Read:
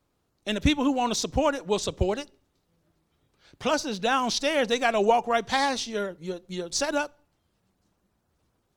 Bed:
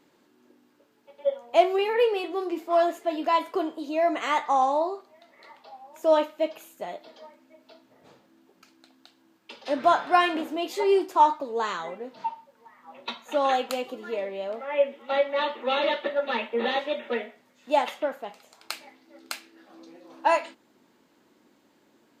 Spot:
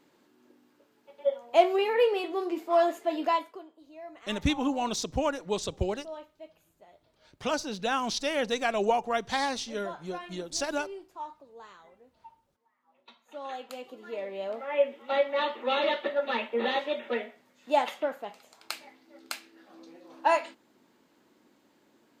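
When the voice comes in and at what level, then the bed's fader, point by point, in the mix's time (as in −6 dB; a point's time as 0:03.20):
3.80 s, −4.5 dB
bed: 0:03.30 −1.5 dB
0:03.65 −21 dB
0:13.06 −21 dB
0:14.44 −2 dB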